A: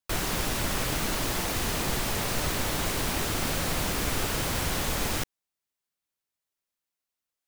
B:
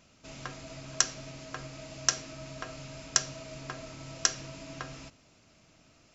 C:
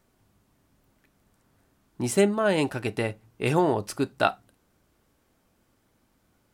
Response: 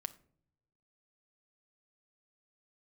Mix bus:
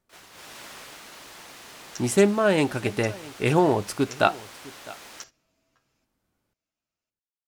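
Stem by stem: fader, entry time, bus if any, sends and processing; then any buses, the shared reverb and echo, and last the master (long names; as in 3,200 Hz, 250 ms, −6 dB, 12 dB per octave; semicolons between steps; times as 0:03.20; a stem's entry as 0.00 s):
−14.5 dB, 0.00 s, no send, no echo send, meter weighting curve A; automatic gain control gain up to 10 dB; automatic ducking −9 dB, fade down 1.05 s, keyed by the third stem
−12.5 dB, 0.95 s, no send, no echo send, low-shelf EQ 340 Hz −11.5 dB; barber-pole flanger 9.3 ms +2 Hz
+2.5 dB, 0.00 s, no send, echo send −20.5 dB, no processing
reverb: not used
echo: single-tap delay 656 ms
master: noise gate −46 dBFS, range −12 dB; highs frequency-modulated by the lows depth 0.1 ms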